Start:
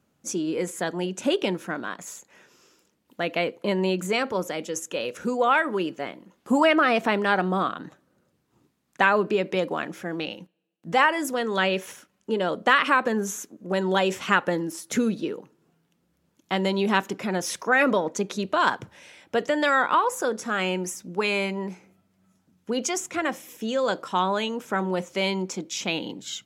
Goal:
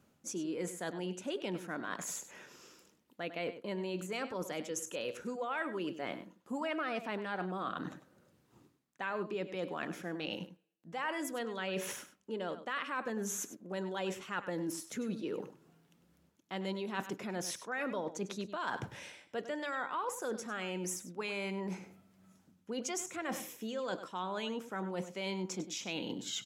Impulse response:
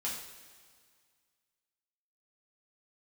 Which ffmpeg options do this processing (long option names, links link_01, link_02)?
-filter_complex "[0:a]areverse,acompressor=threshold=-38dB:ratio=5,areverse,asplit=2[link_01][link_02];[link_02]adelay=99.13,volume=-12dB,highshelf=frequency=4000:gain=-2.23[link_03];[link_01][link_03]amix=inputs=2:normalize=0,volume=1dB"